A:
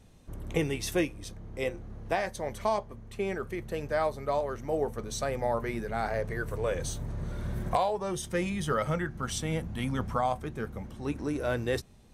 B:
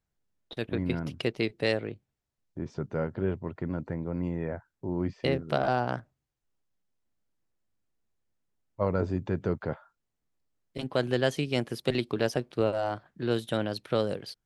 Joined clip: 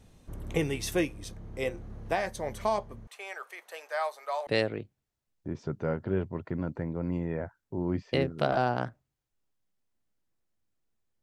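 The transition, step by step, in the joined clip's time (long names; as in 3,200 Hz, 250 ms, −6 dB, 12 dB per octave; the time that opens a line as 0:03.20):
A
0:03.07–0:04.47: high-pass filter 670 Hz 24 dB per octave
0:04.47: continue with B from 0:01.58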